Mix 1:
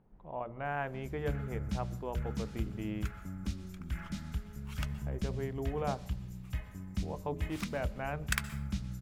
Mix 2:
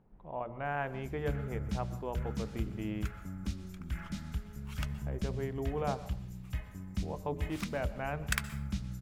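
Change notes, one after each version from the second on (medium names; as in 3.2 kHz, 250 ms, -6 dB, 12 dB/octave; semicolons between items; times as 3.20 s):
speech: send +9.0 dB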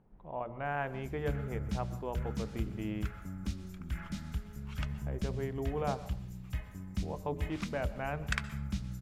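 second sound: add distance through air 87 m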